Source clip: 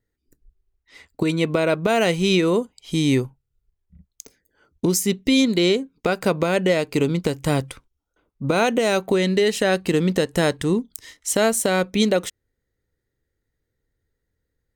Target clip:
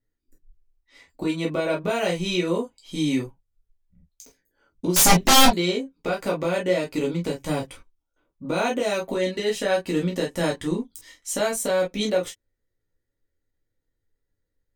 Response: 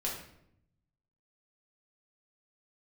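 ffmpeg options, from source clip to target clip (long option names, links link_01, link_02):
-filter_complex "[0:a]asettb=1/sr,asplit=3[link_01][link_02][link_03];[link_01]atrim=end=4.964[link_04];[link_02]atrim=start=4.96:end=5.48,asetpts=PTS-STARTPTS,afade=type=in:duration=0.004:curve=qsin,afade=type=out:start_time=0.516:duration=0.004:curve=qsin,aeval=exprs='0.473*sin(PI/2*7.08*val(0)/0.473)':channel_layout=same[link_05];[link_03]atrim=start=5.476[link_06];[link_04][link_05]acrossfade=duration=0.004:curve1=hsin:curve2=qsin[link_07];[link_07][link_06]acrossfade=duration=0.004:curve1=qsin:curve2=hsin[link_08];[1:a]atrim=start_sample=2205,atrim=end_sample=3087,asetrate=57330,aresample=44100[link_09];[link_08][link_09]afir=irnorm=-1:irlink=0,volume=-5dB"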